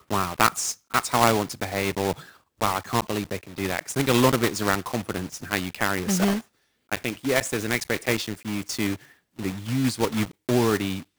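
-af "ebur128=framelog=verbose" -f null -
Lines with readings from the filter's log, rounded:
Integrated loudness:
  I:         -25.2 LUFS
  Threshold: -35.4 LUFS
Loudness range:
  LRA:         2.9 LU
  Threshold: -45.8 LUFS
  LRA low:   -27.4 LUFS
  LRA high:  -24.5 LUFS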